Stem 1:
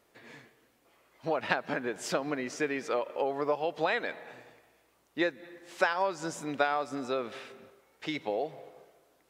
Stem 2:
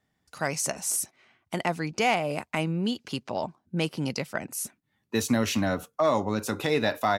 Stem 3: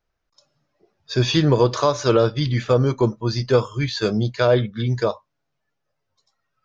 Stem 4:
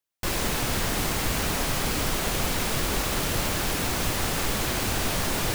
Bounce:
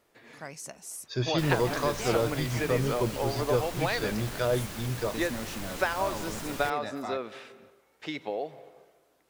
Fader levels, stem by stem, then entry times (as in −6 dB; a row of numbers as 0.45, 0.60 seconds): −1.0, −13.0, −10.5, −13.0 decibels; 0.00, 0.00, 0.00, 1.15 seconds